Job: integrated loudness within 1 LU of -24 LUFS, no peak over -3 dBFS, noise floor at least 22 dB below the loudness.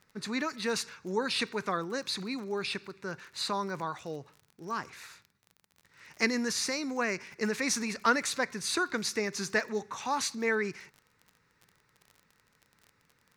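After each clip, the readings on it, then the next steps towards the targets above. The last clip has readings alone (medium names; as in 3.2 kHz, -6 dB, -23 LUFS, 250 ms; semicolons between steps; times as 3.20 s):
tick rate 36 per s; loudness -32.0 LUFS; peak level -11.5 dBFS; loudness target -24.0 LUFS
-> de-click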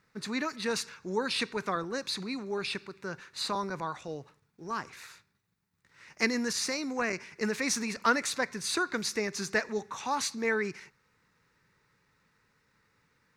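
tick rate 0.075 per s; loudness -32.0 LUFS; peak level -11.5 dBFS; loudness target -24.0 LUFS
-> trim +8 dB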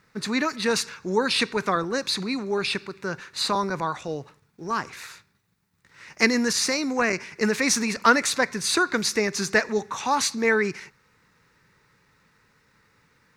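loudness -24.0 LUFS; peak level -3.5 dBFS; noise floor -66 dBFS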